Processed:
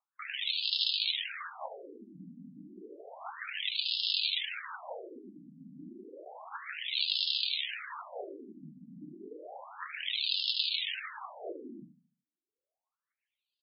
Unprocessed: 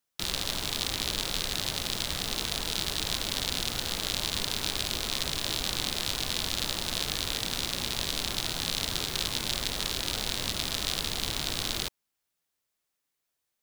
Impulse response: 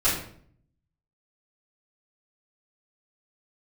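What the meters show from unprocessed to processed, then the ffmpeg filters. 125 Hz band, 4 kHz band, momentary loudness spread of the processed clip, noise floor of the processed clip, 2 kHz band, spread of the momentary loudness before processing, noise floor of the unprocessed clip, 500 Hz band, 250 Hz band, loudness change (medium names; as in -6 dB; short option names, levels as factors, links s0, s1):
-20.0 dB, -3.5 dB, 22 LU, under -85 dBFS, -3.5 dB, 1 LU, -83 dBFS, -6.5 dB, -9.0 dB, -2.5 dB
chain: -filter_complex "[0:a]aphaser=in_gain=1:out_gain=1:delay=3.1:decay=0.66:speed=0.61:type=triangular,asplit=2[s0][s1];[s1]aecho=0:1:73|146|219|292|365:0.316|0.139|0.0612|0.0269|0.0119[s2];[s0][s2]amix=inputs=2:normalize=0,afftfilt=real='re*between(b*sr/1024,200*pow(3800/200,0.5+0.5*sin(2*PI*0.31*pts/sr))/1.41,200*pow(3800/200,0.5+0.5*sin(2*PI*0.31*pts/sr))*1.41)':imag='im*between(b*sr/1024,200*pow(3800/200,0.5+0.5*sin(2*PI*0.31*pts/sr))/1.41,200*pow(3800/200,0.5+0.5*sin(2*PI*0.31*pts/sr))*1.41)':win_size=1024:overlap=0.75"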